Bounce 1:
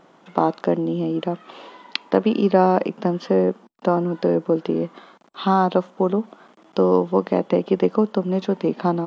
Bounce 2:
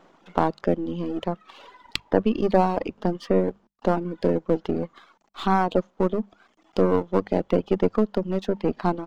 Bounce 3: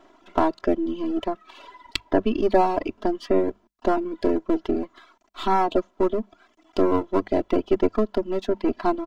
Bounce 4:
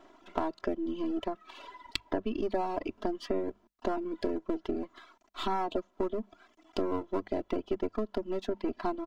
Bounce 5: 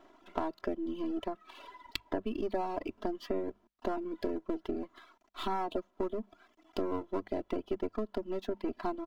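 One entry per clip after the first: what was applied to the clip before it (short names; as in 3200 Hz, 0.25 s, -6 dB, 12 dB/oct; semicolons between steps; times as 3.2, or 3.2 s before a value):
half-wave gain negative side -7 dB; notches 50/100/150/200 Hz; reverb removal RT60 1 s
comb 3 ms, depth 93%; gain -1.5 dB
compressor 3:1, threshold -27 dBFS, peak gain reduction 11 dB; gain -3 dB
median filter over 5 samples; gain -2.5 dB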